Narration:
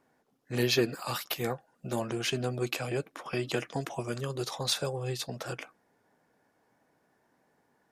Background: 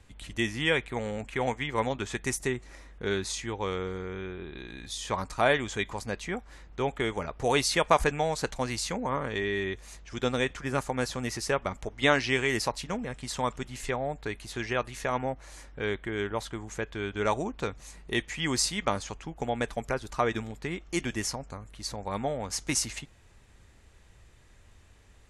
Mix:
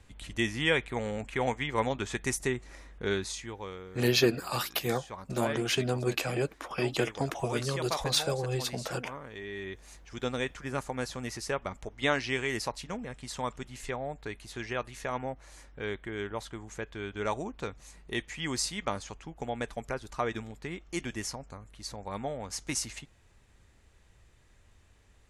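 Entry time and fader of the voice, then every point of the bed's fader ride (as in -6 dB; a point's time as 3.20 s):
3.45 s, +2.0 dB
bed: 3.12 s -0.5 dB
3.85 s -12 dB
9.36 s -12 dB
9.88 s -4.5 dB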